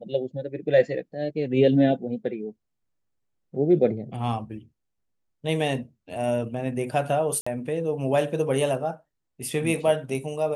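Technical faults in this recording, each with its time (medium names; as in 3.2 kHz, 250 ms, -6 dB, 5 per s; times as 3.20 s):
7.41–7.46 s: dropout 55 ms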